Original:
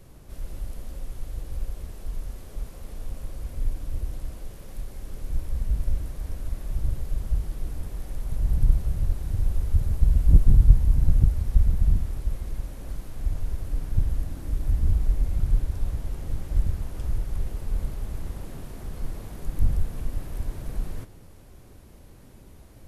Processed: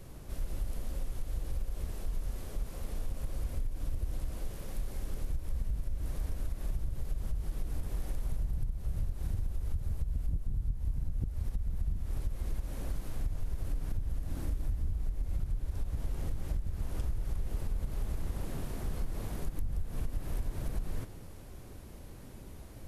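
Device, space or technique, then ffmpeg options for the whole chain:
serial compression, peaks first: -af "acompressor=threshold=-25dB:ratio=6,acompressor=threshold=-30dB:ratio=3,volume=1dB"

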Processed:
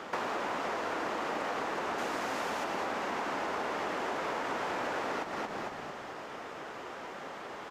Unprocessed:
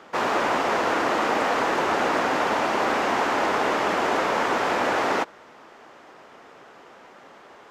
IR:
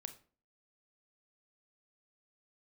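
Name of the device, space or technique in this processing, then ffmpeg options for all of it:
serial compression, peaks first: -filter_complex "[0:a]asettb=1/sr,asplit=3[a][b][c];[a]atrim=end=1.984[d];[b]atrim=start=1.98:end=2.64,asetpts=PTS-STARTPTS,afade=t=in:d=0.004:c=qsin,afade=t=out:st=0.656:d=0.004:c=qsin,highshelf=f=5k:g=9.5[e];[c]atrim=start=2.636[f];[d][e]acrossfade=d=0.004:c1=hsin:c2=qsin[g];[g][f]acrossfade=d=0.004:c1=qsin:c2=hsin,asplit=5[h][i][j][k][l];[i]adelay=225,afreqshift=-38,volume=-9dB[m];[j]adelay=450,afreqshift=-76,volume=-17.2dB[n];[k]adelay=675,afreqshift=-114,volume=-25.4dB[o];[l]adelay=900,afreqshift=-152,volume=-33.5dB[p];[h][m][n][o][p]amix=inputs=5:normalize=0,acompressor=threshold=-33dB:ratio=6,acompressor=threshold=-44dB:ratio=1.5,volume=5dB"

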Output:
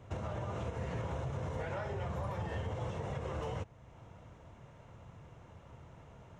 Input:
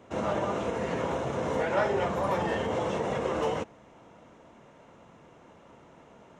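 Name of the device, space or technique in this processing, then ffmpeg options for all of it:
car stereo with a boomy subwoofer: -af "lowshelf=f=160:t=q:w=1.5:g=13,alimiter=level_in=1.5dB:limit=-24dB:level=0:latency=1:release=377,volume=-1.5dB,volume=-4dB"

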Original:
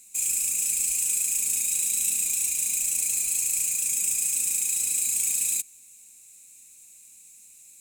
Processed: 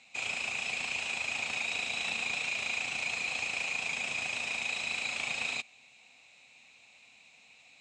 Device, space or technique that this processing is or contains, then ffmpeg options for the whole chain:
overdrive pedal into a guitar cabinet: -filter_complex "[0:a]asplit=2[a][b];[b]highpass=f=720:p=1,volume=10dB,asoftclip=type=tanh:threshold=-11dB[c];[a][c]amix=inputs=2:normalize=0,lowpass=f=3.7k:p=1,volume=-6dB,highpass=89,equalizer=f=190:t=q:w=4:g=-4,equalizer=f=340:t=q:w=4:g=-8,equalizer=f=740:t=q:w=4:g=7,equalizer=f=1.6k:t=q:w=4:g=-3,lowpass=f=3.7k:w=0.5412,lowpass=f=3.7k:w=1.3066,volume=7dB"

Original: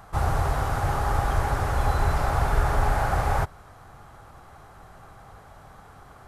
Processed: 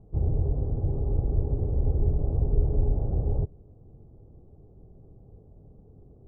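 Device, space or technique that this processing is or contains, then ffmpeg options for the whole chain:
under water: -af "lowpass=f=410:w=0.5412,lowpass=f=410:w=1.3066,equalizer=f=440:t=o:w=0.47:g=4"

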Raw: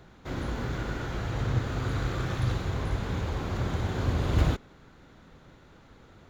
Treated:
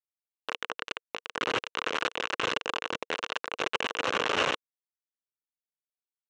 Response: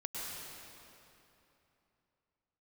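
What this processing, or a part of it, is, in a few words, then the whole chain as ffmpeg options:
hand-held game console: -af "acrusher=bits=3:mix=0:aa=0.000001,highpass=440,equalizer=f=470:t=q:w=4:g=6,equalizer=f=730:t=q:w=4:g=-4,equalizer=f=1.1k:t=q:w=4:g=4,equalizer=f=1.5k:t=q:w=4:g=4,equalizer=f=2.8k:t=q:w=4:g=8,equalizer=f=4.8k:t=q:w=4:g=-8,lowpass=f=5.9k:w=0.5412,lowpass=f=5.9k:w=1.3066"

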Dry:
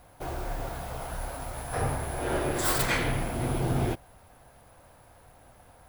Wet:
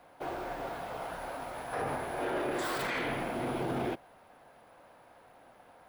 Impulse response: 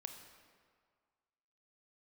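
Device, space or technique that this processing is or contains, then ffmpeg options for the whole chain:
DJ mixer with the lows and highs turned down: -filter_complex "[0:a]acrossover=split=190 4100:gain=0.112 1 0.251[a][b][c];[a][b][c]amix=inputs=3:normalize=0,alimiter=level_in=1dB:limit=-24dB:level=0:latency=1:release=22,volume=-1dB"

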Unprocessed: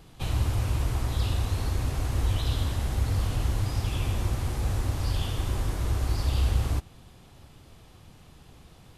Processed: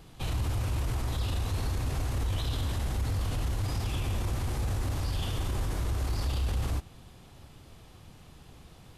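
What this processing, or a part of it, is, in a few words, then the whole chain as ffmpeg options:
clipper into limiter: -af "asoftclip=type=hard:threshold=-17.5dB,alimiter=limit=-23.5dB:level=0:latency=1:release=12"

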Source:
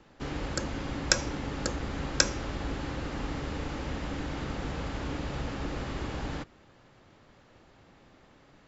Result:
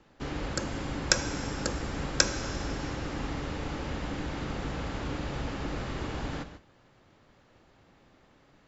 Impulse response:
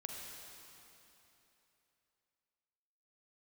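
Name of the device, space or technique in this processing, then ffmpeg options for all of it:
keyed gated reverb: -filter_complex "[0:a]asplit=3[a][b][c];[1:a]atrim=start_sample=2205[d];[b][d]afir=irnorm=-1:irlink=0[e];[c]apad=whole_len=382378[f];[e][f]sidechaingate=range=-33dB:threshold=-52dB:ratio=16:detection=peak,volume=-2.5dB[g];[a][g]amix=inputs=2:normalize=0,volume=-3dB"

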